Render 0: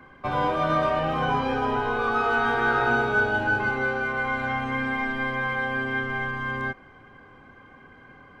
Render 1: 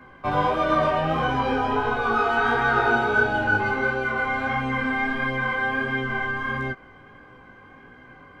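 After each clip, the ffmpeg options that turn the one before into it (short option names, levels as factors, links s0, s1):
-af "flanger=delay=15.5:depth=4.9:speed=1.5,volume=1.78"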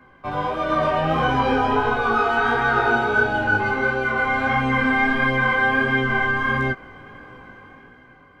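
-af "dynaudnorm=f=130:g=13:m=3.16,volume=0.668"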